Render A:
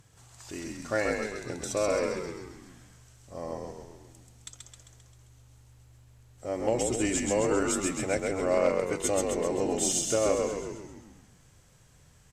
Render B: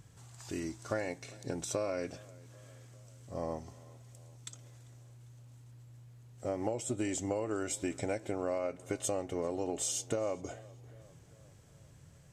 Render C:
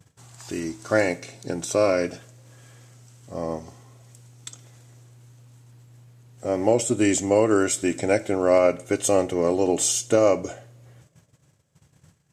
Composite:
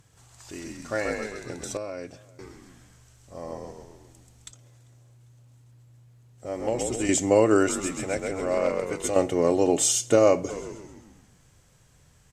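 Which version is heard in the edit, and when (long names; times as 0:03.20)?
A
0:01.77–0:02.39: punch in from B
0:04.51–0:06.46: punch in from B
0:07.09–0:07.69: punch in from C
0:09.16–0:10.50: punch in from C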